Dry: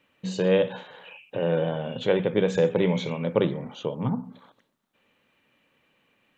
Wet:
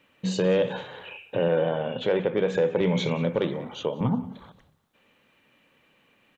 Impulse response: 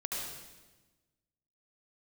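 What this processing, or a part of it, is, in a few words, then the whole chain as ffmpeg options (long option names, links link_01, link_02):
soft clipper into limiter: -filter_complex "[0:a]asettb=1/sr,asplit=3[link_01][link_02][link_03];[link_01]atrim=end=1.484[link_04];[link_02]atrim=start=1.48:end=2.81,asetpts=PTS-STARTPTS,afade=type=in:duration=0.004:curve=qsin,afade=type=out:start_time=1.326:duration=0.004:curve=qsin,bass=frequency=250:gain=-7,treble=frequency=4000:gain=-11[link_05];[link_03]atrim=start=2.806[link_06];[link_04][link_05]acrossfade=duration=0.004:curve1=hsin:curve2=qsin[link_07];[link_07][link_06]acrossfade=duration=0.004:curve1=qsin:curve2=hsin,asettb=1/sr,asplit=3[link_08][link_09][link_10];[link_08]atrim=end=3.384[link_11];[link_09]atrim=start=3.38:end=4.01,asetpts=PTS-STARTPTS,afade=type=in:duration=0.004:curve=qsin,afade=type=out:start_time=0.626:duration=0.004:curve=qsin,highpass=frequency=310:poles=1[link_12];[link_10]atrim=start=4.006[link_13];[link_11][link_12]acrossfade=duration=0.004:curve1=hsin:curve2=qsin[link_14];[link_14][link_13]acrossfade=duration=0.004:curve1=qsin:curve2=hsin,asoftclip=type=tanh:threshold=-10.5dB,alimiter=limit=-18.5dB:level=0:latency=1:release=114,asplit=4[link_15][link_16][link_17][link_18];[link_16]adelay=182,afreqshift=-31,volume=-21.5dB[link_19];[link_17]adelay=364,afreqshift=-62,volume=-30.1dB[link_20];[link_18]adelay=546,afreqshift=-93,volume=-38.8dB[link_21];[link_15][link_19][link_20][link_21]amix=inputs=4:normalize=0,volume=4dB"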